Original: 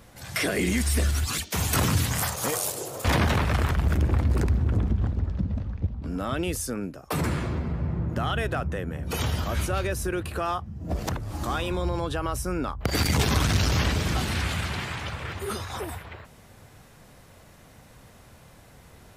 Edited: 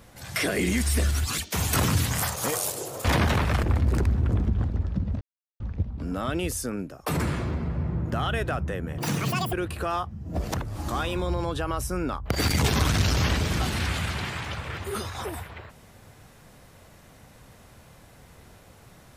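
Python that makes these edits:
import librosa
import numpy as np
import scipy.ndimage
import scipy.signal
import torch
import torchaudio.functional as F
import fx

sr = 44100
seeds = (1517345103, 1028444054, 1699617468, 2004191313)

y = fx.edit(x, sr, fx.cut(start_s=3.63, length_s=0.43),
    fx.insert_silence(at_s=5.64, length_s=0.39),
    fx.speed_span(start_s=9.02, length_s=1.06, speed=1.93), tone=tone)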